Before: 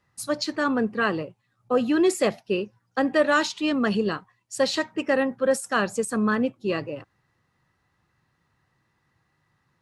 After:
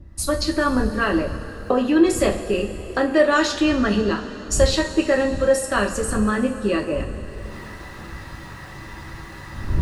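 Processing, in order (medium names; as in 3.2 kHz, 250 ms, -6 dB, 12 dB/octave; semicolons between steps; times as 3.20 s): recorder AGC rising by 39 dB/s; wind noise 88 Hz -33 dBFS; two-slope reverb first 0.26 s, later 3.9 s, from -18 dB, DRR 0.5 dB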